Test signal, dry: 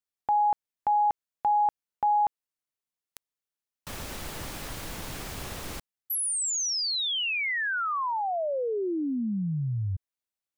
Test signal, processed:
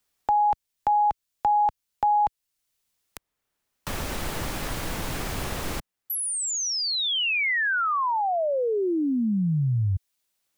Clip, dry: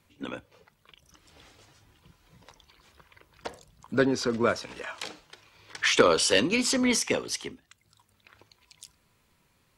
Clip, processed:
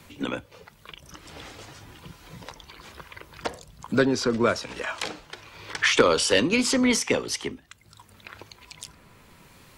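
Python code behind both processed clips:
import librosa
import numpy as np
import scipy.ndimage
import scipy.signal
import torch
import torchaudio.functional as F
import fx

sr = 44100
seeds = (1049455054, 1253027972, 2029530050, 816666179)

y = fx.low_shelf(x, sr, hz=73.0, db=5.5)
y = fx.band_squash(y, sr, depth_pct=40)
y = y * librosa.db_to_amplitude(4.0)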